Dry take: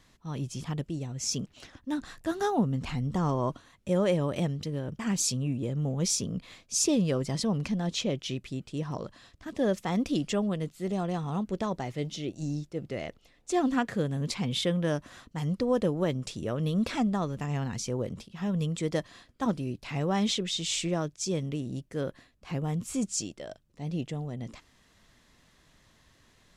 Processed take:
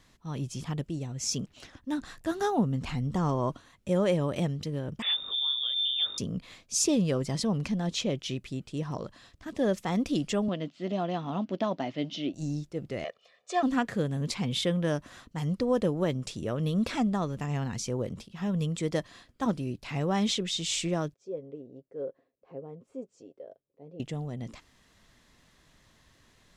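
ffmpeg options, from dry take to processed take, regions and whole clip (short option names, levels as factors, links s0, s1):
-filter_complex "[0:a]asettb=1/sr,asplit=3[s0][s1][s2];[s0]atrim=end=5.024[s3];[s1]atrim=start=5.02:end=6.18,asetpts=PTS-STARTPTS,afade=t=in:d=0.004:c=qsin,afade=t=out:st=1.156:d=0.004:c=qsin,aeval=exprs='val(0)+0.0112*(sin(2*PI*50*n/s)+sin(2*PI*2*50*n/s)/2+sin(2*PI*3*50*n/s)/3+sin(2*PI*4*50*n/s)/4+sin(2*PI*5*50*n/s)/5)':c=same,lowpass=f=3100:t=q:w=0.5098,lowpass=f=3100:t=q:w=0.6013,lowpass=f=3100:t=q:w=0.9,lowpass=f=3100:t=q:w=2.563,afreqshift=-3700[s4];[s2]atrim=start=6.176[s5];[s3][s4]acrossfade=d=0.004:c1=hsin:c2=qsin[s6];[s6][s5]acrossfade=d=0.004:c1=qsin:c2=hsin,asettb=1/sr,asplit=3[s7][s8][s9];[s7]atrim=end=10.484[s10];[s8]atrim=start=10.48:end=12.34,asetpts=PTS-STARTPTS,afade=t=in:d=0.004:c=qsin,afade=t=out:st=1.856:d=0.004:c=qsin,bandreject=f=790:w=22,acrusher=bits=9:mode=log:mix=0:aa=0.000001,highpass=190,equalizer=f=270:t=q:w=4:g=9,equalizer=f=440:t=q:w=4:g=-6,equalizer=f=640:t=q:w=4:g=7,equalizer=f=3000:t=q:w=4:g=6,lowpass=f=5200:w=0.5412,lowpass=f=5200:w=1.3066[s11];[s9]atrim=start=12.336[s12];[s10][s11]acrossfade=d=0.004:c1=hsin:c2=qsin[s13];[s13][s12]acrossfade=d=0.004:c1=qsin:c2=hsin,asettb=1/sr,asplit=3[s14][s15][s16];[s14]atrim=end=13.044[s17];[s15]atrim=start=13.04:end=13.63,asetpts=PTS-STARTPTS,afade=t=in:d=0.004:c=qsin,afade=t=out:st=0.586:d=0.004:c=qsin,highpass=430,lowpass=4900,aecho=1:1:1.7:0.89,atrim=end_sample=26019[s18];[s16]atrim=start=13.626[s19];[s17][s18]acrossfade=d=0.004:c1=hsin:c2=qsin[s20];[s20][s19]acrossfade=d=0.004:c1=qsin:c2=hsin,asettb=1/sr,asplit=3[s21][s22][s23];[s21]atrim=end=21.144[s24];[s22]atrim=start=21.14:end=24,asetpts=PTS-STARTPTS,afade=t=in:d=0.004:c=qsin,afade=t=out:st=2.856:d=0.004:c=qsin,bandpass=f=480:t=q:w=3.7,aecho=1:1:7.4:0.42,atrim=end_sample=126126[s25];[s23]atrim=start=23.996[s26];[s24][s25]acrossfade=d=0.004:c1=hsin:c2=qsin[s27];[s27][s26]acrossfade=d=0.004:c1=qsin:c2=hsin"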